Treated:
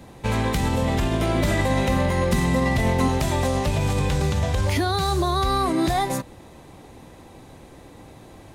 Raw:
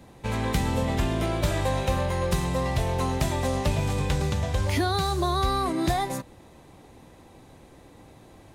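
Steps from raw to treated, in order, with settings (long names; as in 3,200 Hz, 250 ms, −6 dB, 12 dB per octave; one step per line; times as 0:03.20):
brickwall limiter −19 dBFS, peak gain reduction 6.5 dB
0:01.34–0:03.08: hollow resonant body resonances 230/2,000 Hz, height 16 dB, ringing for 100 ms
level +5.5 dB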